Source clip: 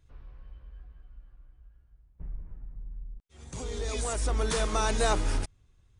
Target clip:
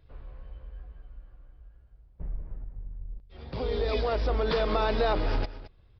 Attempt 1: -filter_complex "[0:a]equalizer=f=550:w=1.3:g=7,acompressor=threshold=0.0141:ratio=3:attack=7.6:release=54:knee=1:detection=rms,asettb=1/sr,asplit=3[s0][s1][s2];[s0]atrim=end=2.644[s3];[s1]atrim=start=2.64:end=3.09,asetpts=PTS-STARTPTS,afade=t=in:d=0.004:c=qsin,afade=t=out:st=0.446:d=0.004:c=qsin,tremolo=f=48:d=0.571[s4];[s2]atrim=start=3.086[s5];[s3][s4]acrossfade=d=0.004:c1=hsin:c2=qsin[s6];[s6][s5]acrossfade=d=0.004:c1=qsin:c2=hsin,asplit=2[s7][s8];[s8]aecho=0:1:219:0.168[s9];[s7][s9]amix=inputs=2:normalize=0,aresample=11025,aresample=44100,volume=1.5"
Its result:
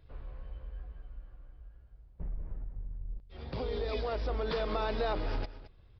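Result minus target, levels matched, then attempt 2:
compression: peak gain reduction +6.5 dB
-filter_complex "[0:a]equalizer=f=550:w=1.3:g=7,acompressor=threshold=0.0422:ratio=3:attack=7.6:release=54:knee=1:detection=rms,asettb=1/sr,asplit=3[s0][s1][s2];[s0]atrim=end=2.644[s3];[s1]atrim=start=2.64:end=3.09,asetpts=PTS-STARTPTS,afade=t=in:d=0.004:c=qsin,afade=t=out:st=0.446:d=0.004:c=qsin,tremolo=f=48:d=0.571[s4];[s2]atrim=start=3.086[s5];[s3][s4]acrossfade=d=0.004:c1=hsin:c2=qsin[s6];[s6][s5]acrossfade=d=0.004:c1=qsin:c2=hsin,asplit=2[s7][s8];[s8]aecho=0:1:219:0.168[s9];[s7][s9]amix=inputs=2:normalize=0,aresample=11025,aresample=44100,volume=1.5"

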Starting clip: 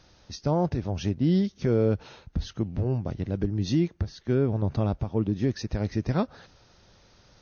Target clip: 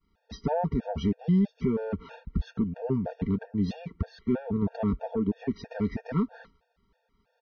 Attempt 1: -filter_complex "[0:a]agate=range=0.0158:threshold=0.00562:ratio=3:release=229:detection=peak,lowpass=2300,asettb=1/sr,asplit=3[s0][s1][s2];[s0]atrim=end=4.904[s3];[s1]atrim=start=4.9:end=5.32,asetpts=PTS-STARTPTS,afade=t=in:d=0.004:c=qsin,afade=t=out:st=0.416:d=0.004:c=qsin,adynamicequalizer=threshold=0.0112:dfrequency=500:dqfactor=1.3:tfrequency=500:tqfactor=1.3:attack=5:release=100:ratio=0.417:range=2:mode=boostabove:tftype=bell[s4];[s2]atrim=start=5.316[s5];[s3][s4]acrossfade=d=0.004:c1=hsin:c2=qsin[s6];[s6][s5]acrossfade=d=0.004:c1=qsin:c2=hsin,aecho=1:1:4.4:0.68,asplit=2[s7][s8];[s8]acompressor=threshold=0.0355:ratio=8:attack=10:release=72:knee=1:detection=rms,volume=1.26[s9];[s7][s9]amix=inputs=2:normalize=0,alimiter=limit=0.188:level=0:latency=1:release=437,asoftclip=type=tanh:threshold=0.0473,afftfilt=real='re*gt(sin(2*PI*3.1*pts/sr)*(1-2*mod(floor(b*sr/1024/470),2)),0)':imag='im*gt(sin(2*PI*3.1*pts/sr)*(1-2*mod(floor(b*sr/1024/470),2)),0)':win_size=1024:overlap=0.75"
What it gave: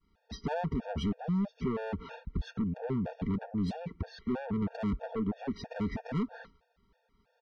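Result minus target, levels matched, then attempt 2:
saturation: distortion +12 dB; compression: peak gain reduction +8 dB
-filter_complex "[0:a]agate=range=0.0158:threshold=0.00562:ratio=3:release=229:detection=peak,lowpass=2300,asettb=1/sr,asplit=3[s0][s1][s2];[s0]atrim=end=4.904[s3];[s1]atrim=start=4.9:end=5.32,asetpts=PTS-STARTPTS,afade=t=in:d=0.004:c=qsin,afade=t=out:st=0.416:d=0.004:c=qsin,adynamicequalizer=threshold=0.0112:dfrequency=500:dqfactor=1.3:tfrequency=500:tqfactor=1.3:attack=5:release=100:ratio=0.417:range=2:mode=boostabove:tftype=bell[s4];[s2]atrim=start=5.316[s5];[s3][s4]acrossfade=d=0.004:c1=hsin:c2=qsin[s6];[s6][s5]acrossfade=d=0.004:c1=qsin:c2=hsin,aecho=1:1:4.4:0.68,asplit=2[s7][s8];[s8]acompressor=threshold=0.1:ratio=8:attack=10:release=72:knee=1:detection=rms,volume=1.26[s9];[s7][s9]amix=inputs=2:normalize=0,alimiter=limit=0.188:level=0:latency=1:release=437,asoftclip=type=tanh:threshold=0.168,afftfilt=real='re*gt(sin(2*PI*3.1*pts/sr)*(1-2*mod(floor(b*sr/1024/470),2)),0)':imag='im*gt(sin(2*PI*3.1*pts/sr)*(1-2*mod(floor(b*sr/1024/470),2)),0)':win_size=1024:overlap=0.75"

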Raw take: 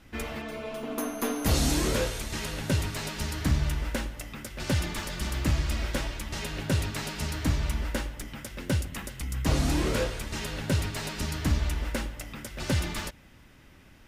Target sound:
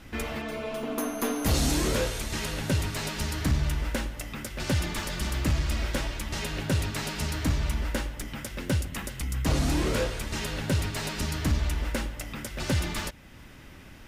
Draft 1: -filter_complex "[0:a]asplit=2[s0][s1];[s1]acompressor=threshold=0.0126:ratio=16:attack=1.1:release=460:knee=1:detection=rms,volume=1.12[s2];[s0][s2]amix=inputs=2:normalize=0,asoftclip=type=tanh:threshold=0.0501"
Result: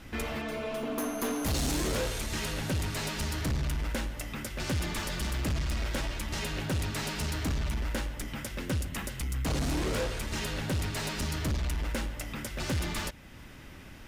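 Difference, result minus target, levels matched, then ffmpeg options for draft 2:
saturation: distortion +15 dB
-filter_complex "[0:a]asplit=2[s0][s1];[s1]acompressor=threshold=0.0126:ratio=16:attack=1.1:release=460:knee=1:detection=rms,volume=1.12[s2];[s0][s2]amix=inputs=2:normalize=0,asoftclip=type=tanh:threshold=0.188"

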